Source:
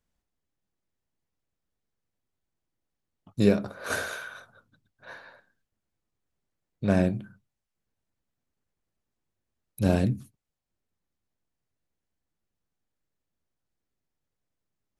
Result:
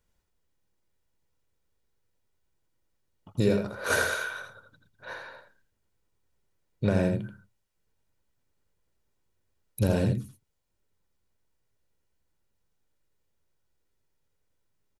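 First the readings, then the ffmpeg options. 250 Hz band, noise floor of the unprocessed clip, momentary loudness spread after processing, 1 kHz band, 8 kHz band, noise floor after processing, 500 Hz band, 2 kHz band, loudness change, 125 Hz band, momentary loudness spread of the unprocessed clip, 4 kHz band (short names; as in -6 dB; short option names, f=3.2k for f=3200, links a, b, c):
-3.0 dB, -85 dBFS, 19 LU, +1.5 dB, +4.5 dB, -76 dBFS, 0.0 dB, +4.5 dB, -0.5 dB, 0.0 dB, 18 LU, +3.0 dB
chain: -af "aecho=1:1:2.1:0.33,alimiter=limit=-17dB:level=0:latency=1:release=430,aecho=1:1:83:0.501,volume=4dB"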